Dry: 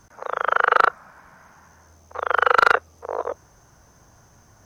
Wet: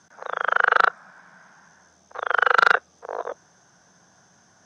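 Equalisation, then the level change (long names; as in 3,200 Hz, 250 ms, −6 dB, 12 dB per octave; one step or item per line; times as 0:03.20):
loudspeaker in its box 170–8,400 Hz, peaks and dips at 180 Hz +9 dB, 730 Hz +4 dB, 1,600 Hz +8 dB, 3,500 Hz +8 dB, 5,400 Hz +4 dB
high-shelf EQ 5,600 Hz +5 dB
−5.0 dB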